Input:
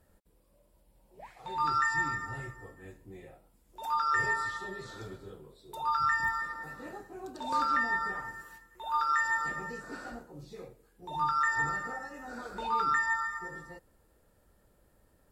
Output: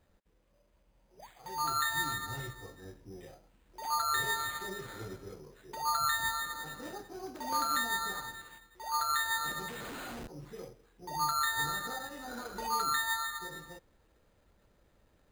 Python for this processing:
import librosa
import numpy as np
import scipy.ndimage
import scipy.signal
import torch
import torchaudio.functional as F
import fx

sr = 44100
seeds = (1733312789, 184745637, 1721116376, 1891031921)

p1 = fx.rider(x, sr, range_db=4, speed_s=0.5)
p2 = x + F.gain(torch.from_numpy(p1), 1.0).numpy()
p3 = fx.brickwall_bandstop(p2, sr, low_hz=1800.0, high_hz=7100.0, at=(2.8, 3.21))
p4 = fx.schmitt(p3, sr, flips_db=-43.0, at=(9.68, 10.28))
p5 = np.repeat(p4[::8], 8)[:len(p4)]
y = F.gain(torch.from_numpy(p5), -8.5).numpy()